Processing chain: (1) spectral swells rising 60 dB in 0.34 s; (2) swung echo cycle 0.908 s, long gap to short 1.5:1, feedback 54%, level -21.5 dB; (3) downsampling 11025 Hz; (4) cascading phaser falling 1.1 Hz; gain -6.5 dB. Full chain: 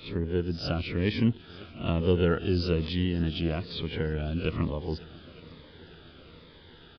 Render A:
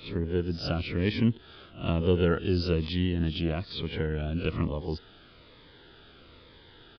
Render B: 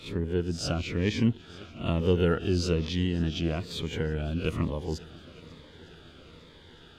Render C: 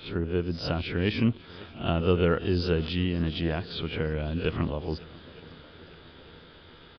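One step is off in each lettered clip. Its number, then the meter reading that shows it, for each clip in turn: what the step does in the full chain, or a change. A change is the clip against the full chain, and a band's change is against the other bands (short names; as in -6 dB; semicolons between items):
2, momentary loudness spread change -8 LU; 3, momentary loudness spread change -4 LU; 4, 1 kHz band +2.0 dB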